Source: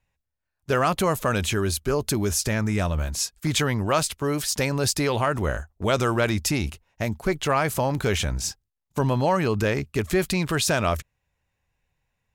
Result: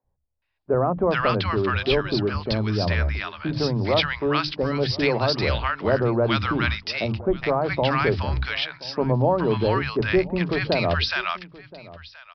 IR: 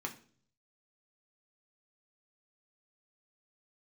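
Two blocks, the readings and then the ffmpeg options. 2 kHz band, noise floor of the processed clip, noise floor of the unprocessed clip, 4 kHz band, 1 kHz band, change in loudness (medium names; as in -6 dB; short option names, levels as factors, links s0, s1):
+3.0 dB, -72 dBFS, -81 dBFS, +2.5 dB, +1.0 dB, +1.5 dB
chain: -filter_complex "[0:a]bandreject=f=50:t=h:w=6,bandreject=f=100:t=h:w=6,bandreject=f=150:t=h:w=6,bandreject=f=200:t=h:w=6,bandreject=f=250:t=h:w=6,bandreject=f=300:t=h:w=6,acrossover=split=170|990[s0][s1][s2];[s0]adelay=40[s3];[s2]adelay=420[s4];[s3][s1][s4]amix=inputs=3:normalize=0,aresample=11025,aresample=44100,asplit=2[s5][s6];[s6]aecho=0:1:1026:0.1[s7];[s5][s7]amix=inputs=2:normalize=0,volume=1.5"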